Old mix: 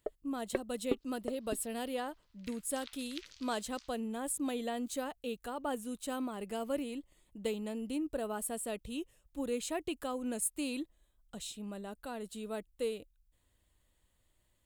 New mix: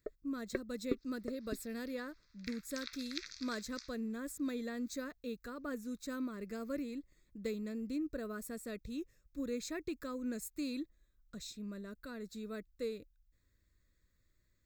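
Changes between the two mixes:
second sound +8.0 dB; master: add fixed phaser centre 3000 Hz, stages 6

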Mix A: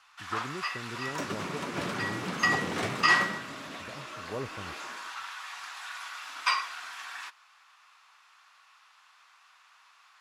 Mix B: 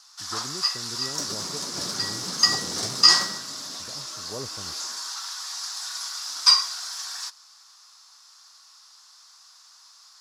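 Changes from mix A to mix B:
second sound -3.5 dB; master: add resonant high shelf 3600 Hz +12.5 dB, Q 3

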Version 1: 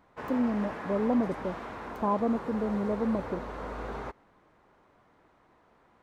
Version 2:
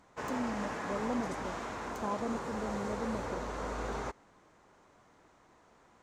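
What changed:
speech -9.0 dB; master: add bell 6900 Hz +14 dB 1 oct

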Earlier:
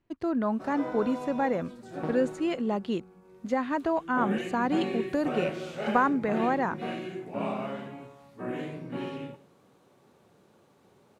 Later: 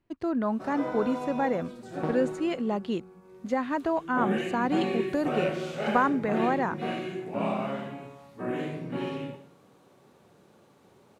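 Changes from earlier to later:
first sound: send +9.5 dB; second sound +3.0 dB

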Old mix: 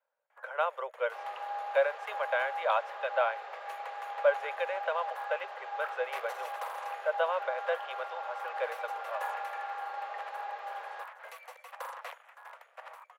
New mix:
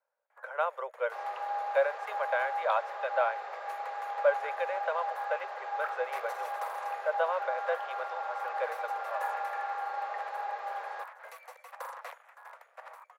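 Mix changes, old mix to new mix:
second sound +3.5 dB; master: add bell 3000 Hz -6.5 dB 0.6 oct

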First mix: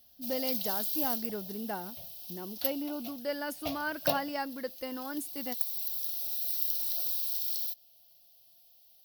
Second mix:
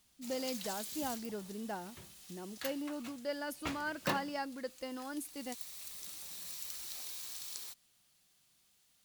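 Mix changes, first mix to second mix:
speech -4.0 dB; background: remove EQ curve 160 Hz 0 dB, 310 Hz -20 dB, 670 Hz +15 dB, 970 Hz -8 dB, 1600 Hz -16 dB, 3000 Hz +3 dB, 5400 Hz +7 dB, 8300 Hz -19 dB, 12000 Hz +15 dB

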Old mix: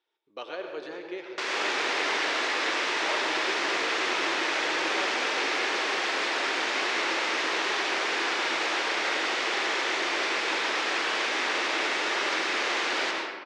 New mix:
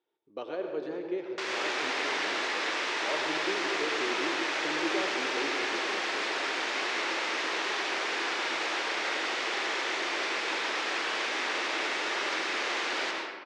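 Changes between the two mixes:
speech: add tilt shelf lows +8.5 dB, about 700 Hz; background -3.5 dB

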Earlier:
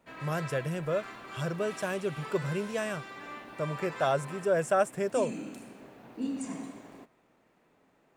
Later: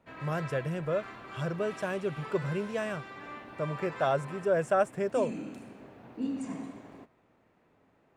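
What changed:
background: add bell 86 Hz +14 dB 0.56 oct; master: add high shelf 5100 Hz -11 dB

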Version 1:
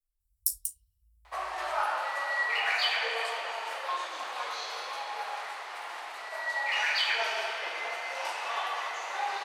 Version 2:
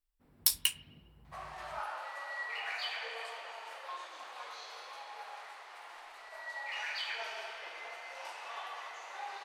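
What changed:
speech: remove inverse Chebyshev band-stop 190–2200 Hz, stop band 60 dB; background -10.5 dB

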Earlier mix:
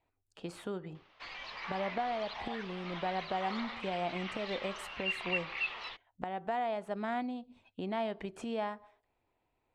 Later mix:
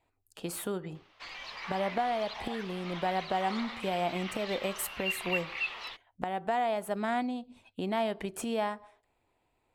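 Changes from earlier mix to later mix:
speech +4.0 dB; master: remove air absorption 100 m

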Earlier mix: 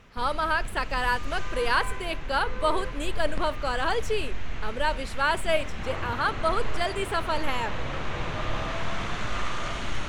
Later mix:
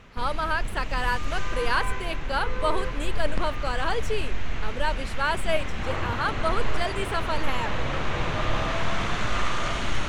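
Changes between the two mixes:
speech: send off; background +4.0 dB

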